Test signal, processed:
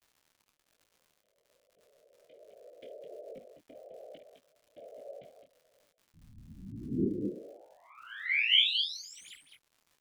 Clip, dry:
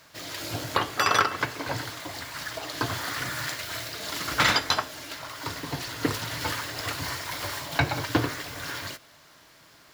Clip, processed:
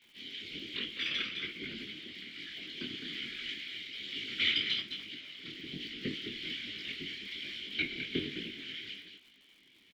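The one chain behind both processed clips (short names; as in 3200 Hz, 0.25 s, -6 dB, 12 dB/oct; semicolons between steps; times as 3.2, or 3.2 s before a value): tracing distortion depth 0.027 ms; vowel filter i; bell 3200 Hz +14.5 dB 1.2 oct; loudspeakers at several distances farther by 18 m -11 dB, 72 m -7 dB; whisperiser; crackle 100/s -47 dBFS; dynamic EQ 960 Hz, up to -4 dB, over -48 dBFS, Q 1.2; detuned doubles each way 41 cents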